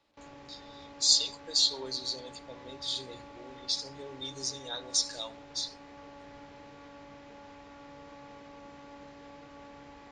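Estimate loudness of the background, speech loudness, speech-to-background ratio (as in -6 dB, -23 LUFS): -50.0 LUFS, -30.0 LUFS, 20.0 dB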